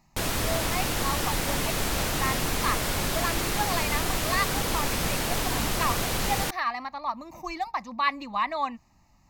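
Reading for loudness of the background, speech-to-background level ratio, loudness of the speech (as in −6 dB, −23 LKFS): −27.5 LKFS, −4.5 dB, −32.0 LKFS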